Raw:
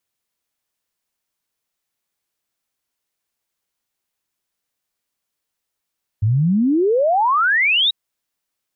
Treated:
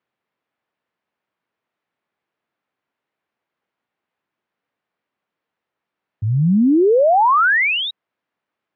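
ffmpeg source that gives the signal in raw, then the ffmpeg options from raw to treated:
-f lavfi -i "aevalsrc='0.224*clip(min(t,1.69-t)/0.01,0,1)*sin(2*PI*99*1.69/log(3900/99)*(exp(log(3900/99)*t/1.69)-1))':duration=1.69:sample_rate=44100"
-filter_complex "[0:a]aemphasis=mode=reproduction:type=50fm,asplit=2[link_01][link_02];[link_02]alimiter=limit=-22.5dB:level=0:latency=1:release=23,volume=1.5dB[link_03];[link_01][link_03]amix=inputs=2:normalize=0,highpass=140,lowpass=2300"

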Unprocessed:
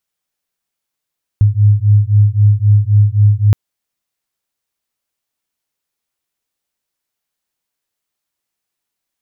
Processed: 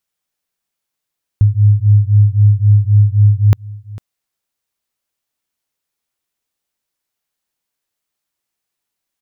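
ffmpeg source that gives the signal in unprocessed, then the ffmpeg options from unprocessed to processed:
-f lavfi -i "aevalsrc='0.316*(sin(2*PI*102*t)+sin(2*PI*105.8*t))':duration=2.12:sample_rate=44100"
-af "aecho=1:1:451:0.1"

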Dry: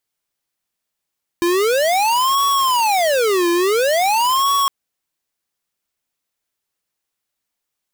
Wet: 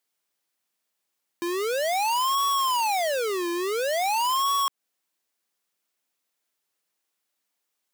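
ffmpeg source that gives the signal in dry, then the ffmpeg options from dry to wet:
-f lavfi -i "aevalsrc='0.158*(2*lt(mod((731.5*t-388.5/(2*PI*0.48)*sin(2*PI*0.48*t)),1),0.5)-1)':duration=3.26:sample_rate=44100"
-af "highpass=200,alimiter=limit=-20.5dB:level=0:latency=1:release=186"

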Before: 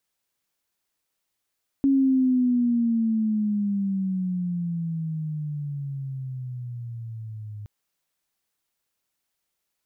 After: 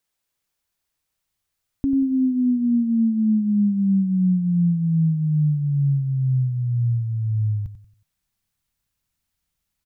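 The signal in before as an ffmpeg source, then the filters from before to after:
-f lavfi -i "aevalsrc='pow(10,(-16-18*t/5.82)/20)*sin(2*PI*276*5.82/(-17*log(2)/12)*(exp(-17*log(2)/12*t/5.82)-1))':duration=5.82:sample_rate=44100"
-af "asubboost=boost=7.5:cutoff=150,aecho=1:1:92|184|276|368:0.282|0.0958|0.0326|0.0111"

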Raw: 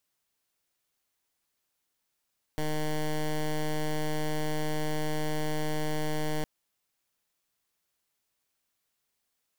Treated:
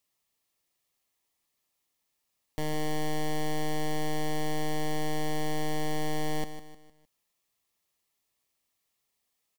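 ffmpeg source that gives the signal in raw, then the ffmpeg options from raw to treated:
-f lavfi -i "aevalsrc='0.0355*(2*lt(mod(153*t,1),0.12)-1)':duration=3.86:sample_rate=44100"
-filter_complex "[0:a]asuperstop=centerf=1500:order=4:qfactor=5.9,asplit=2[link_01][link_02];[link_02]aecho=0:1:153|306|459|612:0.282|0.116|0.0474|0.0194[link_03];[link_01][link_03]amix=inputs=2:normalize=0"

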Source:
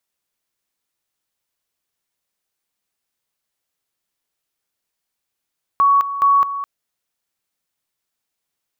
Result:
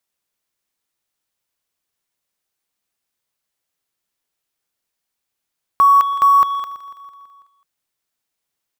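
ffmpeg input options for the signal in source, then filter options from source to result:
-f lavfi -i "aevalsrc='pow(10,(-10-12*gte(mod(t,0.42),0.21))/20)*sin(2*PI*1120*t)':duration=0.84:sample_rate=44100"
-filter_complex "[0:a]asplit=2[link_01][link_02];[link_02]acrusher=bits=3:mix=0:aa=0.5,volume=-8dB[link_03];[link_01][link_03]amix=inputs=2:normalize=0,aecho=1:1:165|330|495|660|825|990:0.158|0.0951|0.0571|0.0342|0.0205|0.0123"

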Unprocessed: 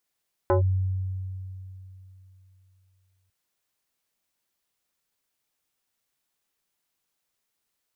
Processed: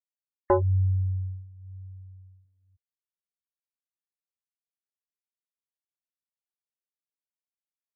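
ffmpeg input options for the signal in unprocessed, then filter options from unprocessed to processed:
-f lavfi -i "aevalsrc='0.15*pow(10,-3*t/3.19)*sin(2*PI*94.1*t+2*clip(1-t/0.12,0,1)*sin(2*PI*4.93*94.1*t))':duration=2.8:sample_rate=44100"
-af "afftfilt=real='re*gte(hypot(re,im),0.0112)':imag='im*gte(hypot(re,im),0.0112)':win_size=1024:overlap=0.75,acontrast=38,flanger=delay=0.6:depth=4.4:regen=-22:speed=0.98:shape=sinusoidal"

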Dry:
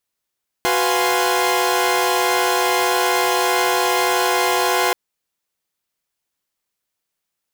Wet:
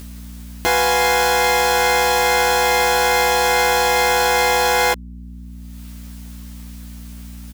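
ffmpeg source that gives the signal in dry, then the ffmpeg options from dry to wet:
-f lavfi -i "aevalsrc='0.1*((2*mod(369.99*t,1)-1)+(2*mod(493.88*t,1)-1)+(2*mod(698.46*t,1)-1)+(2*mod(830.61*t,1)-1)+(2*mod(1046.5*t,1)-1))':duration=4.28:sample_rate=44100"
-filter_complex "[0:a]acompressor=mode=upward:threshold=-22dB:ratio=2.5,aeval=exprs='val(0)+0.02*(sin(2*PI*60*n/s)+sin(2*PI*2*60*n/s)/2+sin(2*PI*3*60*n/s)/3+sin(2*PI*4*60*n/s)/4+sin(2*PI*5*60*n/s)/5)':channel_layout=same,asplit=2[link_01][link_02];[link_02]adelay=12,volume=-3dB[link_03];[link_01][link_03]amix=inputs=2:normalize=0"

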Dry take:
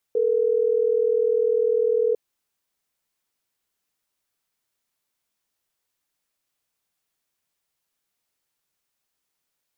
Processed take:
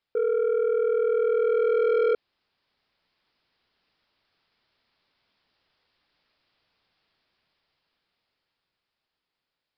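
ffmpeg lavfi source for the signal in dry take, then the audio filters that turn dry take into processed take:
-f lavfi -i "aevalsrc='0.0944*(sin(2*PI*440*t)+sin(2*PI*480*t))*clip(min(mod(t,6),2-mod(t,6))/0.005,0,1)':duration=3.12:sample_rate=44100"
-af "dynaudnorm=framelen=350:gausssize=13:maxgain=12dB,aresample=11025,asoftclip=type=tanh:threshold=-19dB,aresample=44100"

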